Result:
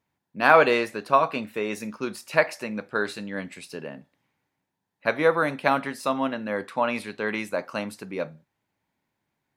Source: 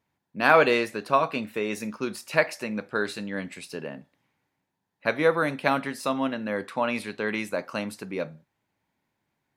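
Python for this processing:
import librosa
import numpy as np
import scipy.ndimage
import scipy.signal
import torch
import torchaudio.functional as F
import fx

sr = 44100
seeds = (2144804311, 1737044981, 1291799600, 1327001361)

y = fx.dynamic_eq(x, sr, hz=930.0, q=0.72, threshold_db=-34.0, ratio=4.0, max_db=4)
y = F.gain(torch.from_numpy(y), -1.0).numpy()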